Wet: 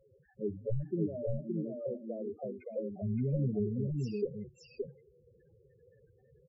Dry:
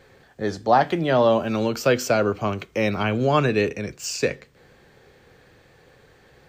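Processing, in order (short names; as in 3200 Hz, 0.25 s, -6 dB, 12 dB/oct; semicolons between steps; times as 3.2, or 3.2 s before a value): one-sided fold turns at -16.5 dBFS; treble ducked by the level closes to 350 Hz, closed at -19.5 dBFS; 1.06–3.03 RIAA curve recording; loudest bins only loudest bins 4; echo 0.57 s -3 dB; gain -6 dB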